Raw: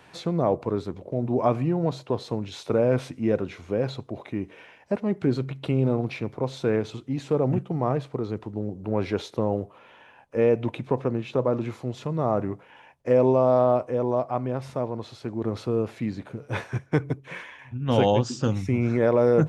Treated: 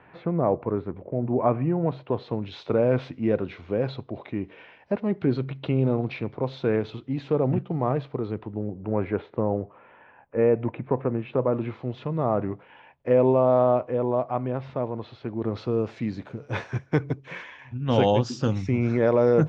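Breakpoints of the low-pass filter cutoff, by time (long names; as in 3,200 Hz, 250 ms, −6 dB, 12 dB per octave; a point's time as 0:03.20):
low-pass filter 24 dB per octave
0:01.61 2,300 Hz
0:02.54 4,100 Hz
0:08.13 4,100 Hz
0:09.03 2,200 Hz
0:10.90 2,200 Hz
0:11.84 3,600 Hz
0:15.34 3,600 Hz
0:15.83 6,200 Hz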